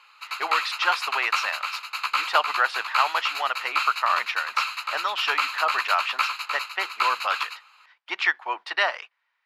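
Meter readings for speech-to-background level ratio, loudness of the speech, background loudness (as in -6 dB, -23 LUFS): 1.0 dB, -26.5 LUFS, -27.5 LUFS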